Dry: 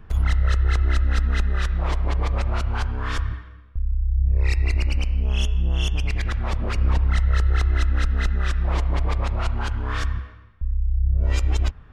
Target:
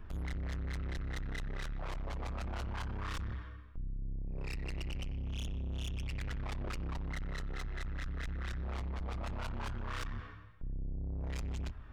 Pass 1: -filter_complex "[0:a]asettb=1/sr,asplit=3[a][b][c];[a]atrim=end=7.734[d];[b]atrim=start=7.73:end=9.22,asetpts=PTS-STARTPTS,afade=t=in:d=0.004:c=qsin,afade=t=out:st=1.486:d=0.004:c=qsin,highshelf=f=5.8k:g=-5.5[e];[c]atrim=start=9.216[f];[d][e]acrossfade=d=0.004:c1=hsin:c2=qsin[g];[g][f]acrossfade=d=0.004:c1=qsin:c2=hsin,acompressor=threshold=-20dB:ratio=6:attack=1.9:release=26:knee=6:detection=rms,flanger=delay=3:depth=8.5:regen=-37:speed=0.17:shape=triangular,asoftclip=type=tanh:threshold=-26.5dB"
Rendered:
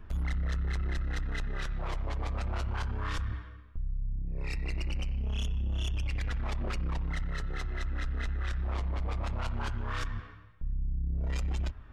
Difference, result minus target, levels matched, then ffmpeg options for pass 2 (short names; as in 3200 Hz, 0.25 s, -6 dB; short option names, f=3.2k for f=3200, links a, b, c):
soft clip: distortion -8 dB
-filter_complex "[0:a]asettb=1/sr,asplit=3[a][b][c];[a]atrim=end=7.734[d];[b]atrim=start=7.73:end=9.22,asetpts=PTS-STARTPTS,afade=t=in:d=0.004:c=qsin,afade=t=out:st=1.486:d=0.004:c=qsin,highshelf=f=5.8k:g=-5.5[e];[c]atrim=start=9.216[f];[d][e]acrossfade=d=0.004:c1=hsin:c2=qsin[g];[g][f]acrossfade=d=0.004:c1=qsin:c2=hsin,acompressor=threshold=-20dB:ratio=6:attack=1.9:release=26:knee=6:detection=rms,flanger=delay=3:depth=8.5:regen=-37:speed=0.17:shape=triangular,asoftclip=type=tanh:threshold=-36dB"